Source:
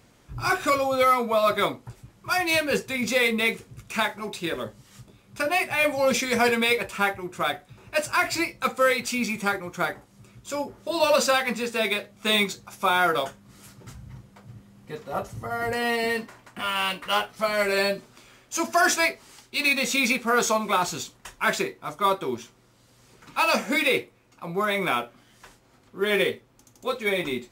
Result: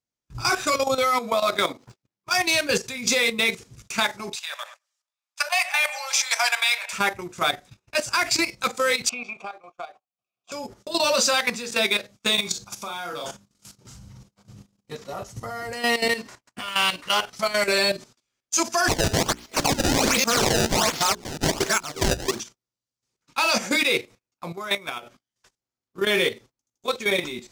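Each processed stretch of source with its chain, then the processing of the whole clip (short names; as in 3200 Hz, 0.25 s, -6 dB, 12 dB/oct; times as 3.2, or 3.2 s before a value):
1.33–2.35 median filter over 5 samples + HPF 150 Hz + AM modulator 93 Hz, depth 25%
4.35–6.93 steep high-pass 680 Hz 48 dB/oct + analogue delay 0.105 s, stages 2048, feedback 53%, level -13 dB
9.09–10.52 vowel filter a + three-band squash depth 100%
12.35–14.95 bell 1900 Hz -5 dB 0.34 oct + compressor 8:1, threshold -24 dBFS + doubler 40 ms -5 dB
18.88–22.4 reverse delay 0.227 s, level -1 dB + decimation with a swept rate 23×, swing 160% 1.3 Hz + notches 60/120/180/240/300/360/420 Hz
24.52–25.03 bell 250 Hz -5 dB 0.72 oct + level quantiser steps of 13 dB
whole clip: gate -45 dBFS, range -32 dB; bell 5800 Hz +11 dB 1.4 oct; level quantiser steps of 12 dB; gain +3.5 dB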